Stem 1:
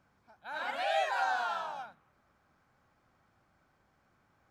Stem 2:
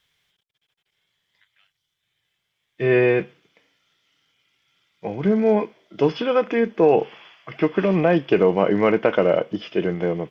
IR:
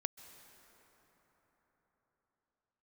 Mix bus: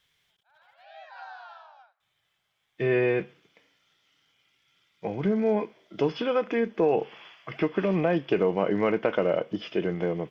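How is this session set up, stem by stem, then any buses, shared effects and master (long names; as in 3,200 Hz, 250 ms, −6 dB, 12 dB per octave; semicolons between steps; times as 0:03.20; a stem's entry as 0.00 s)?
0:00.70 −24 dB → 0:01.19 −11.5 dB, 0.00 s, no send, elliptic band-pass filter 610–5,000 Hz
−1.5 dB, 0.00 s, muted 0:00.85–0:02.00, no send, no processing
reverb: not used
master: downward compressor 1.5 to 1, threshold −29 dBFS, peak gain reduction 6 dB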